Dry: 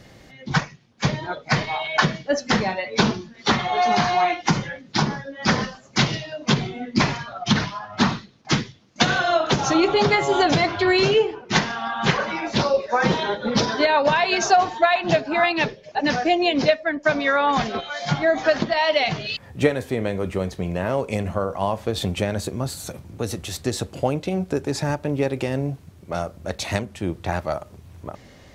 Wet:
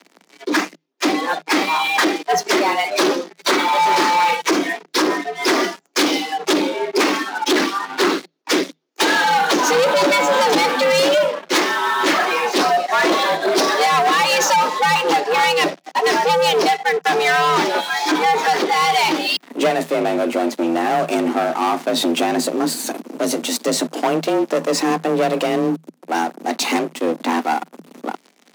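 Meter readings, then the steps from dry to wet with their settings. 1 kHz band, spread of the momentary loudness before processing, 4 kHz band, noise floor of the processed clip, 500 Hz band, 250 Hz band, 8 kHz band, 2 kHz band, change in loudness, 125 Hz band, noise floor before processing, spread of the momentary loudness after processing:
+6.0 dB, 11 LU, +5.5 dB, -58 dBFS, +3.5 dB, +3.5 dB, +8.0 dB, +4.5 dB, +4.5 dB, -11.0 dB, -48 dBFS, 7 LU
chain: sample leveller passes 5; frequency shift +160 Hz; gain -8.5 dB

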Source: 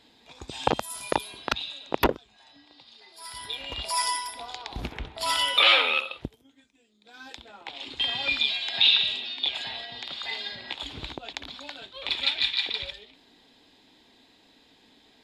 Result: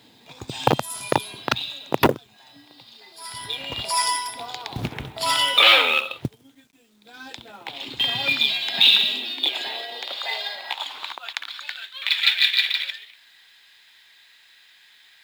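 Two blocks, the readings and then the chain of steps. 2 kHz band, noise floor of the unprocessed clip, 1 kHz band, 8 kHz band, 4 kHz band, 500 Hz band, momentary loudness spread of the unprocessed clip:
+5.5 dB, -60 dBFS, +4.5 dB, +5.0 dB, +5.0 dB, +5.0 dB, 21 LU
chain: high-pass sweep 120 Hz -> 1700 Hz, 8.19–11.71; companded quantiser 6-bit; gain +4.5 dB

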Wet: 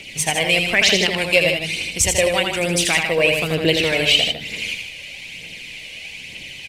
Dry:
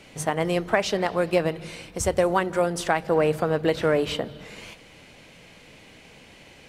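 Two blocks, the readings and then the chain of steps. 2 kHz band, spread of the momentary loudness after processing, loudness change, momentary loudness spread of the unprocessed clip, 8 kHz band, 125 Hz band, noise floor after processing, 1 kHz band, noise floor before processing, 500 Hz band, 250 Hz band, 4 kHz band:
+13.0 dB, 18 LU, +7.0 dB, 14 LU, +14.0 dB, +3.5 dB, -37 dBFS, -1.0 dB, -50 dBFS, +2.0 dB, +2.0 dB, +18.0 dB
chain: resonant high shelf 1800 Hz +10.5 dB, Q 3; phaser 1.1 Hz, delay 1.9 ms, feedback 50%; on a send: loudspeakers at several distances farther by 28 m -5 dB, 53 m -8 dB

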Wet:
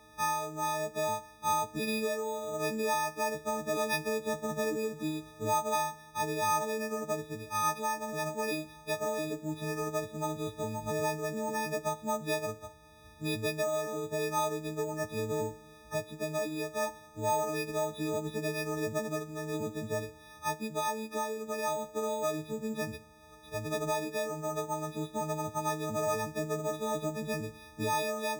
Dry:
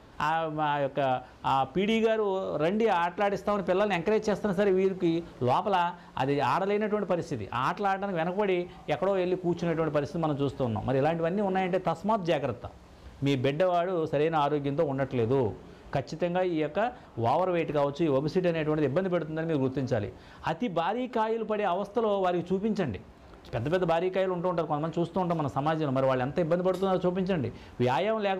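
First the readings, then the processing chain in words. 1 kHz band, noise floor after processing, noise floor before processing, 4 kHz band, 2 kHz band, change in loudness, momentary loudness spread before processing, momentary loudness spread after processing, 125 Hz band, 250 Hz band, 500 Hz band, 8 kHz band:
-4.5 dB, -54 dBFS, -50 dBFS, -1.5 dB, -2.5 dB, -5.5 dB, 5 LU, 6 LU, -8.5 dB, -8.0 dB, -6.5 dB, n/a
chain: frequency quantiser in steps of 6 st; careless resampling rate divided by 6×, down filtered, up hold; gain -8 dB

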